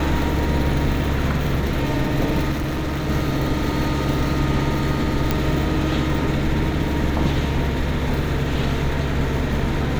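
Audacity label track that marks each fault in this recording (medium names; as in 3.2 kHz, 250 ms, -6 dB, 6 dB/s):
2.510000	3.100000	clipped -20.5 dBFS
5.310000	5.310000	pop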